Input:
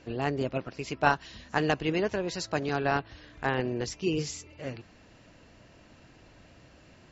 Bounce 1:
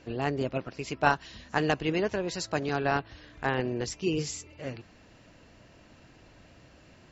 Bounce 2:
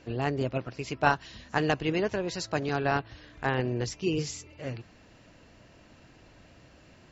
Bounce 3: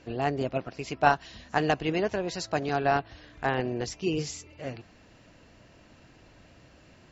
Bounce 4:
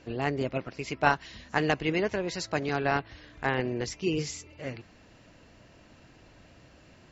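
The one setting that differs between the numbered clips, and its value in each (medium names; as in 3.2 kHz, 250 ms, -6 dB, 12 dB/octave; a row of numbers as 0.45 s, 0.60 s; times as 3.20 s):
dynamic bell, frequency: 7.9 kHz, 120 Hz, 710 Hz, 2.1 kHz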